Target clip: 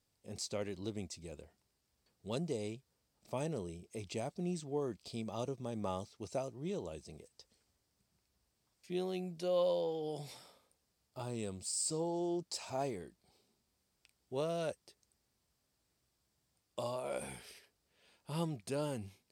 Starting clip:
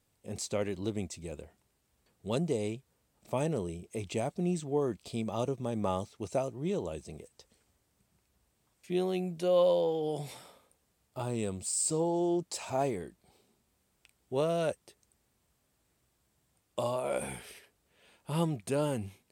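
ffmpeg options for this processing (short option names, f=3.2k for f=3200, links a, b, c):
-af "equalizer=f=4.9k:t=o:w=0.6:g=8,volume=-7dB"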